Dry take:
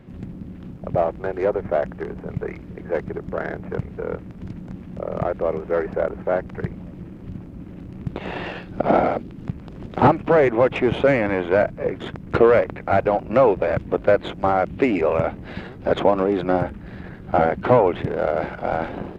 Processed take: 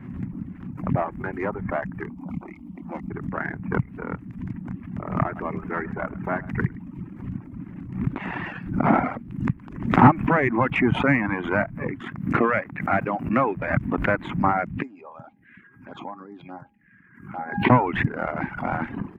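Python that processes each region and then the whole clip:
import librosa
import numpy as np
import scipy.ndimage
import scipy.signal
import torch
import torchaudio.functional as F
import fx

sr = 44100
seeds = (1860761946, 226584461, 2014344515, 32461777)

y = fx.chain(x, sr, fx.highpass(hz=52.0, slope=12),
    fx.fixed_phaser(hz=440.0, stages=6), at=(2.09, 3.11))
y = fx.chain(y, sr, fx.notch(hz=530.0, q=6.1),
    fx.echo_single(ms=106, db=-10.5), at=(4.86, 7.05))
y = fx.chain(y, sr, fx.highpass(hz=190.0, slope=6),
    fx.peak_eq(hz=920.0, db=-6.0, octaves=0.26), at=(12.01, 13.6))
y = fx.chain(y, sr, fx.env_phaser(low_hz=570.0, high_hz=3400.0, full_db=-13.0),
    fx.highpass(hz=400.0, slope=6),
    fx.comb_fb(f0_hz=810.0, decay_s=0.34, harmonics='all', damping=0.0, mix_pct=80), at=(14.82, 17.7))
y = fx.dereverb_blind(y, sr, rt60_s=0.94)
y = fx.graphic_eq(y, sr, hz=(125, 250, 500, 1000, 2000, 4000), db=(8, 11, -10, 9, 10, -9))
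y = fx.pre_swell(y, sr, db_per_s=90.0)
y = y * librosa.db_to_amplitude(-6.0)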